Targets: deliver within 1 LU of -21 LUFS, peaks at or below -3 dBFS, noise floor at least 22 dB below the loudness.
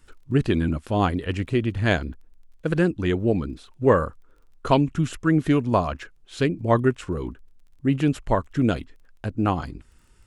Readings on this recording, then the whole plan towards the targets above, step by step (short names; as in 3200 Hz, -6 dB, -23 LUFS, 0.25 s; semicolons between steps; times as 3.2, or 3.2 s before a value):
ticks 19/s; loudness -24.0 LUFS; peak -4.0 dBFS; loudness target -21.0 LUFS
-> de-click; gain +3 dB; limiter -3 dBFS